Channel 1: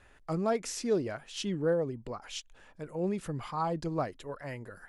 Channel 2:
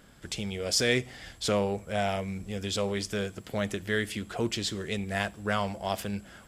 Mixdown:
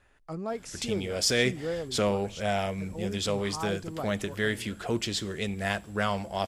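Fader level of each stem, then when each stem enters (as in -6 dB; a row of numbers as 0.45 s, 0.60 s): -4.5 dB, +0.5 dB; 0.00 s, 0.50 s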